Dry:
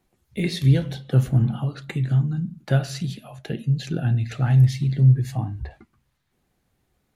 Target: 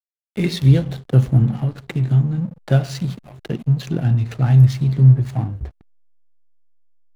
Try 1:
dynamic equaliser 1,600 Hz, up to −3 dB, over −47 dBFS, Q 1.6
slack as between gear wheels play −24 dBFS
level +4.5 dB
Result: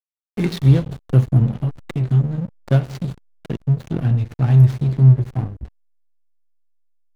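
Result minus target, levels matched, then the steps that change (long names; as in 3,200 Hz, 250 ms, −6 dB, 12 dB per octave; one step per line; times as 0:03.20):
slack as between gear wheels: distortion +8 dB
change: slack as between gear wheels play −33.5 dBFS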